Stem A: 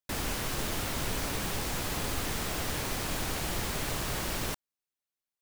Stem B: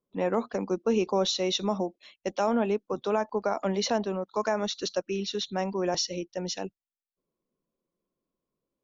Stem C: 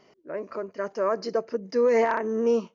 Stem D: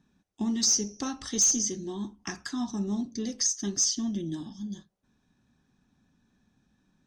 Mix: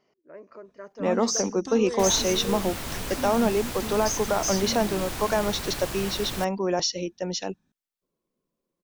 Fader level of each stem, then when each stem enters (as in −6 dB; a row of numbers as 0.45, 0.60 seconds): −0.5, +3.0, −11.5, −4.0 decibels; 1.90, 0.85, 0.00, 0.65 seconds